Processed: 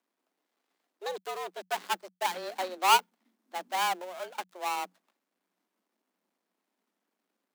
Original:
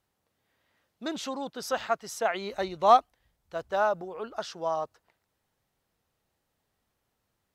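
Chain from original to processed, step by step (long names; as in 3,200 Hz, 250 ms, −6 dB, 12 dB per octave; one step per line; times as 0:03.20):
gap after every zero crossing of 0.25 ms
frequency shifter +180 Hz
level −1.5 dB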